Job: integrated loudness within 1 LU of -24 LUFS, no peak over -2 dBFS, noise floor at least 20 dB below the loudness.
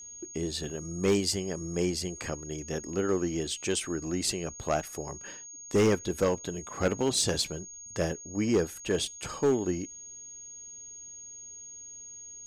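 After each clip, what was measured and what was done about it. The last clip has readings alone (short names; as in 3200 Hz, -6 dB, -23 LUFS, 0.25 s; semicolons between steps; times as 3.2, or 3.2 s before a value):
clipped 0.4%; flat tops at -18.5 dBFS; steady tone 6600 Hz; tone level -43 dBFS; loudness -30.5 LUFS; peak -18.5 dBFS; loudness target -24.0 LUFS
-> clip repair -18.5 dBFS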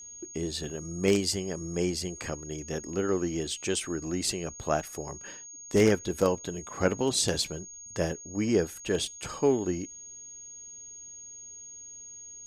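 clipped 0.0%; steady tone 6600 Hz; tone level -43 dBFS
-> notch 6600 Hz, Q 30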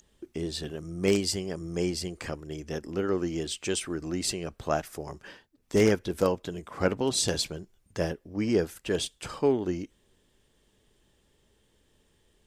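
steady tone none; loudness -30.0 LUFS; peak -9.5 dBFS; loudness target -24.0 LUFS
-> gain +6 dB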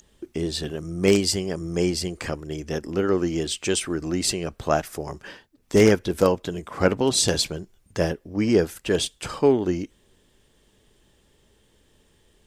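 loudness -23.5 LUFS; peak -3.5 dBFS; noise floor -62 dBFS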